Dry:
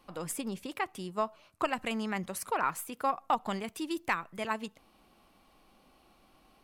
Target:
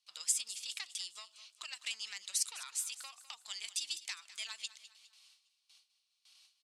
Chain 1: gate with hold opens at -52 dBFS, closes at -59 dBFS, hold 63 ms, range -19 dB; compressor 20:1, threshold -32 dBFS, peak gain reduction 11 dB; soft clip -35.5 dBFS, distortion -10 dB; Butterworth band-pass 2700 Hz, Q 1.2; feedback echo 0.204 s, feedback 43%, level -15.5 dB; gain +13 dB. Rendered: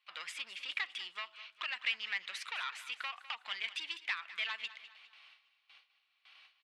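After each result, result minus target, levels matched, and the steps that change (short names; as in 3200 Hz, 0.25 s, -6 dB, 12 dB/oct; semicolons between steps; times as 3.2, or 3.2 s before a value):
2000 Hz band +10.5 dB; soft clip: distortion +10 dB
change: Butterworth band-pass 5600 Hz, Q 1.2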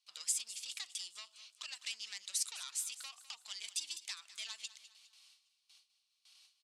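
soft clip: distortion +10 dB
change: soft clip -26.5 dBFS, distortion -20 dB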